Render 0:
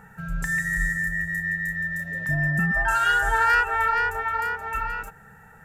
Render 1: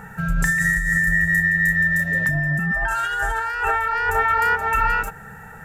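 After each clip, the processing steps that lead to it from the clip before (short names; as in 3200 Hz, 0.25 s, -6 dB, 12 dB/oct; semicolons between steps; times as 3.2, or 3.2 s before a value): negative-ratio compressor -27 dBFS, ratio -1; gain +7 dB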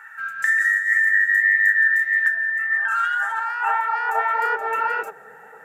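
high shelf 4400 Hz -7 dB; high-pass sweep 1600 Hz -> 460 Hz, 2.77–4.76; flange 1.8 Hz, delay 2 ms, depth 7.2 ms, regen +67%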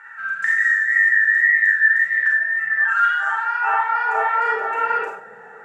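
wow and flutter 21 cents; air absorption 88 m; Schroeder reverb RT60 0.39 s, combs from 32 ms, DRR -0.5 dB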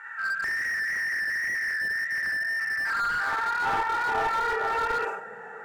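compressor 2:1, threshold -24 dBFS, peak gain reduction 7.5 dB; slew limiter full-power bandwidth 80 Hz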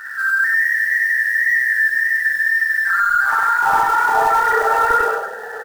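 formant sharpening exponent 2; in parallel at -6.5 dB: companded quantiser 4-bit; on the sum: echo 99 ms -3.5 dB; gain +6.5 dB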